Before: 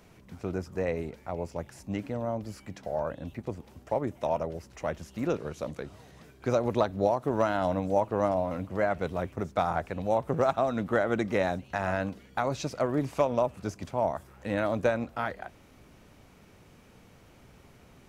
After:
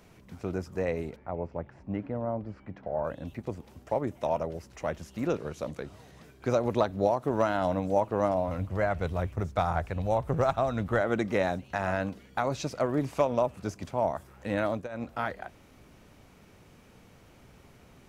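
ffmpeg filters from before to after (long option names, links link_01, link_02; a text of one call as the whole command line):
ffmpeg -i in.wav -filter_complex "[0:a]asettb=1/sr,asplit=3[link_01][link_02][link_03];[link_01]atrim=end=1.164[link_04];[link_02]atrim=start=1.16:end=3.04,asetpts=PTS-STARTPTS,afade=type=in:duration=0.004:curve=qsin,afade=type=out:start_time=1.876:duration=0.004:curve=qsin,lowpass=1700[link_05];[link_03]atrim=start=3.036[link_06];[link_04][link_05]acrossfade=duration=0.004:curve1=hsin:curve2=qsin[link_07];[link_07][link_06]acrossfade=duration=0.004:curve1=qsin:curve2=hsin,asplit=3[link_08][link_09][link_10];[link_08]afade=type=out:start_time=8.47:duration=0.02[link_11];[link_09]asubboost=boost=4:cutoff=110,afade=type=in:start_time=8.47:duration=0.02,afade=type=out:start_time=11:duration=0.02[link_12];[link_10]afade=type=in:start_time=11:duration=0.02[link_13];[link_11][link_12][link_13]amix=inputs=3:normalize=0,asplit=3[link_14][link_15][link_16];[link_14]atrim=end=14.88,asetpts=PTS-STARTPTS,afade=type=out:start_time=14.63:duration=0.25:curve=qsin:silence=0.11885[link_17];[link_15]atrim=start=14.88:end=14.89,asetpts=PTS-STARTPTS,volume=-18.5dB[link_18];[link_16]atrim=start=14.89,asetpts=PTS-STARTPTS,afade=type=in:duration=0.25:curve=qsin:silence=0.11885[link_19];[link_17][link_18][link_19]concat=n=3:v=0:a=1" out.wav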